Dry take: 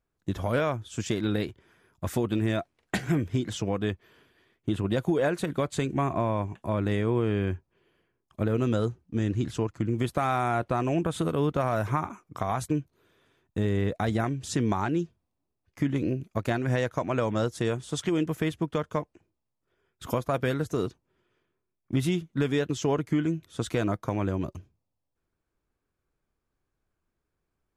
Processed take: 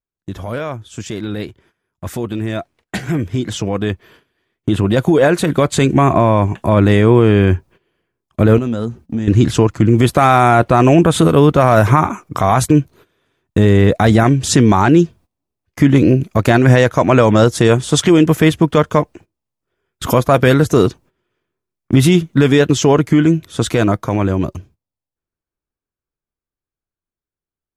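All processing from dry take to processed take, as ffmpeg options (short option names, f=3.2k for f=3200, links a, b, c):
-filter_complex "[0:a]asettb=1/sr,asplit=3[a][b][c];[a]atrim=end=8.584[d];[b]atrim=start=8.58:end=9.28,asetpts=PTS-STARTPTS,afade=t=in:d=0.004:c=qsin,afade=t=out:st=0.696:d=0.004:c=qsin,equalizer=f=230:w=6.7:g=8.5,acompressor=threshold=-37dB:ratio=4:attack=3.2:release=140:knee=1:detection=peak[e];[c]atrim=start=9.276[f];[d][e]acrossfade=d=0.004:c1=hsin:c2=qsin[g];[g][f]acrossfade=d=0.004:c1=qsin:c2=hsin,agate=range=-17dB:threshold=-56dB:ratio=16:detection=peak,alimiter=limit=-19.5dB:level=0:latency=1:release=14,dynaudnorm=f=530:g=17:m=13.5dB,volume=5dB"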